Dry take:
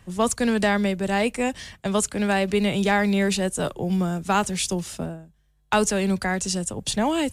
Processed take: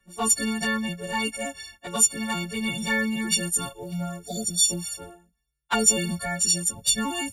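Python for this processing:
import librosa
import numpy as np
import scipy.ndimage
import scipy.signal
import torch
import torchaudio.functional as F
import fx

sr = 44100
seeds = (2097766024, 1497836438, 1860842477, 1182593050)

y = fx.freq_snap(x, sr, grid_st=4)
y = fx.env_flanger(y, sr, rest_ms=5.2, full_db=-12.0)
y = fx.spec_repair(y, sr, seeds[0], start_s=4.28, length_s=0.35, low_hz=770.0, high_hz=3300.0, source='before')
y = fx.band_widen(y, sr, depth_pct=40)
y = y * 10.0 ** (-3.5 / 20.0)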